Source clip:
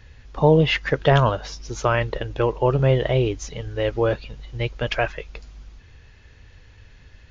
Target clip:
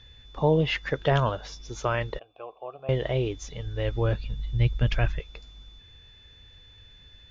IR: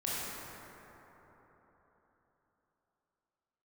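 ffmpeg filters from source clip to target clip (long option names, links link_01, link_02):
-filter_complex "[0:a]asettb=1/sr,asplit=3[link_01][link_02][link_03];[link_01]atrim=end=3.424[link_04];[link_02]atrim=start=3.42:end=5.2,asetpts=PTS-STARTPTS,afade=type=in:duration=0.004:curve=qsin,afade=type=out:start_time=1.776:duration=0.004:curve=qsin,asubboost=boost=11.5:cutoff=210[link_05];[link_03]atrim=start=5.196[link_06];[link_04][link_05]acrossfade=duration=0.004:curve1=hsin:curve2=qsin[link_07];[link_07][link_06]acrossfade=duration=0.004:curve1=qsin:curve2=hsin,aeval=exprs='val(0)+0.00501*sin(2*PI*3500*n/s)':channel_layout=same,asettb=1/sr,asplit=3[link_08][link_09][link_10];[link_08]atrim=end=2.194[link_11];[link_09]atrim=start=2.19:end=2.89,asetpts=PTS-STARTPTS,afade=type=in:duration=0.004:curve=qsin,afade=type=out:start_time=0.696:duration=0.004:curve=qsin,asplit=3[link_12][link_13][link_14];[link_12]bandpass=frequency=730:width_type=q:width=8,volume=0dB[link_15];[link_13]bandpass=frequency=1090:width_type=q:width=8,volume=-6dB[link_16];[link_14]bandpass=frequency=2440:width_type=q:width=8,volume=-9dB[link_17];[link_15][link_16][link_17]amix=inputs=3:normalize=0[link_18];[link_10]atrim=start=2.886[link_19];[link_11][link_18]acrossfade=duration=0.004:curve1=hsin:curve2=qsin[link_20];[link_20][link_19]acrossfade=duration=0.004:curve1=qsin:curve2=hsin,volume=-6.5dB"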